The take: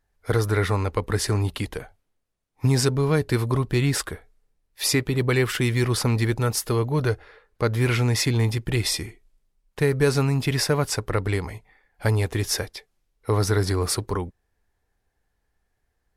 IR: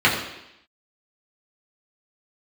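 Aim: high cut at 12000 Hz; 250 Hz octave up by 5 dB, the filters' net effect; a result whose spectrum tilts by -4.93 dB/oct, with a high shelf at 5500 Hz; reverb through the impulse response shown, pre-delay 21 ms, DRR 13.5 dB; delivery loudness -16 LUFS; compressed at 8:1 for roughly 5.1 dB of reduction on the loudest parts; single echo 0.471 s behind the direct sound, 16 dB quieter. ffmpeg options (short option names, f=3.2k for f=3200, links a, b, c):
-filter_complex "[0:a]lowpass=12k,equalizer=f=250:t=o:g=6.5,highshelf=f=5.5k:g=4.5,acompressor=threshold=-19dB:ratio=8,aecho=1:1:471:0.158,asplit=2[a][b];[1:a]atrim=start_sample=2205,adelay=21[c];[b][c]afir=irnorm=-1:irlink=0,volume=-35dB[d];[a][d]amix=inputs=2:normalize=0,volume=9dB"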